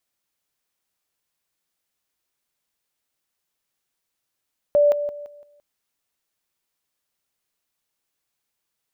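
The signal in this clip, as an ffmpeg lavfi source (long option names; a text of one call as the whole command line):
ffmpeg -f lavfi -i "aevalsrc='pow(10,(-12.5-10*floor(t/0.17))/20)*sin(2*PI*584*t)':duration=0.85:sample_rate=44100" out.wav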